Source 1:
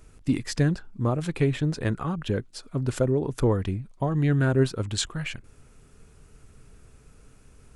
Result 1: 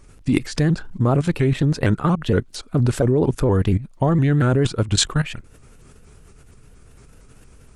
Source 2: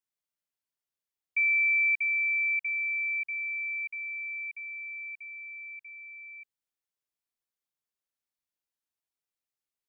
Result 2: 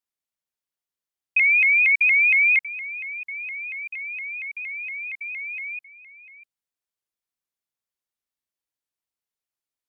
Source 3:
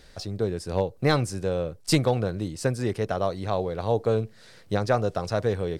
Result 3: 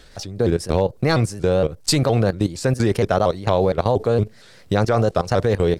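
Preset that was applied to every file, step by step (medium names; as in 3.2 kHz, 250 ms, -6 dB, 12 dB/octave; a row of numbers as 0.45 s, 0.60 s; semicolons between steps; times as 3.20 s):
level held to a coarse grid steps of 15 dB; vibrato with a chosen wave saw up 4.3 Hz, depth 160 cents; normalise loudness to -20 LUFS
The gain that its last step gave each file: +14.0 dB, +13.0 dB, +13.5 dB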